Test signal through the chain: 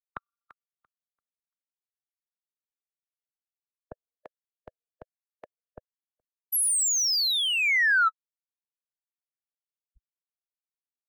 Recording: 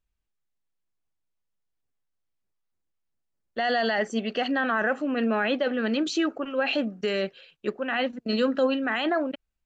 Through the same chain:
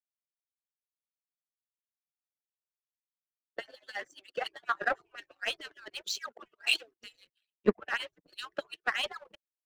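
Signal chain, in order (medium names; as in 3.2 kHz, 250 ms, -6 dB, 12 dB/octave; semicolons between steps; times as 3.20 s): harmonic-percussive separation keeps percussive; power-law waveshaper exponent 1.4; three bands expanded up and down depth 100%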